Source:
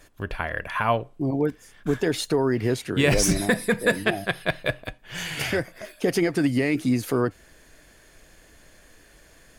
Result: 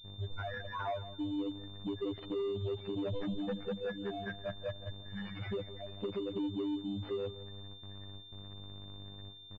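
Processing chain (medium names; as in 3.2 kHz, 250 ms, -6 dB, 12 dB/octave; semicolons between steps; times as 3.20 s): spectral contrast enhancement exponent 3.7; mains buzz 50 Hz, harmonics 24, -43 dBFS -7 dB/octave; in parallel at -7.5 dB: bit crusher 7-bit; on the sum: robot voice 99.6 Hz; gate with hold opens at -29 dBFS; compression 3:1, threshold -27 dBFS, peak gain reduction 10 dB; saturation -25.5 dBFS, distortion -14 dB; on a send: feedback delay 168 ms, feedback 30%, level -15 dB; on the sum: class-D stage that switches slowly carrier 3.6 kHz; trim -5 dB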